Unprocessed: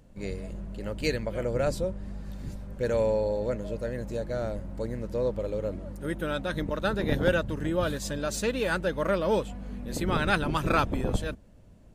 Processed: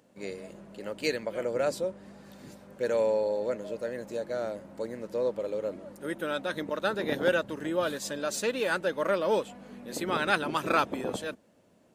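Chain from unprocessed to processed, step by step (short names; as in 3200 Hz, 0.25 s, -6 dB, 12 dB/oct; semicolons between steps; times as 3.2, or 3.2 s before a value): HPF 280 Hz 12 dB/oct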